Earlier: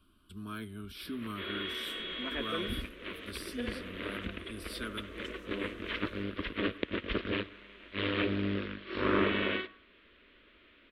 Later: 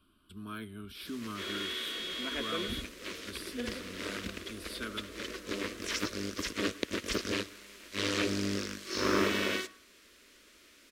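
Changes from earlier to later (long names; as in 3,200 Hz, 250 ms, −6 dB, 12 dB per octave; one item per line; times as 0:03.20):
first sound: remove Butterworth low-pass 3,500 Hz 48 dB per octave
master: add low-shelf EQ 87 Hz −6.5 dB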